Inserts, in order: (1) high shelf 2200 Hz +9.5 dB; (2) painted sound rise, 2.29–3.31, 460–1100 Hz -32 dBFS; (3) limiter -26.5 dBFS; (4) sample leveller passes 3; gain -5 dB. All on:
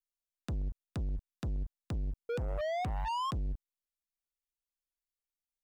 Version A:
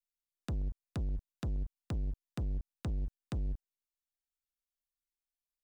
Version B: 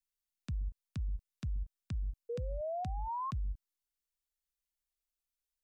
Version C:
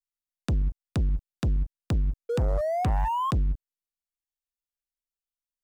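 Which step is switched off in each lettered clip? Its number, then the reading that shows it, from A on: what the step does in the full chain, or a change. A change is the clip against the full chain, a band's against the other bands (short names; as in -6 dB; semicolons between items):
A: 2, 250 Hz band +11.0 dB; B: 4, 2 kHz band -12.5 dB; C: 3, mean gain reduction 5.5 dB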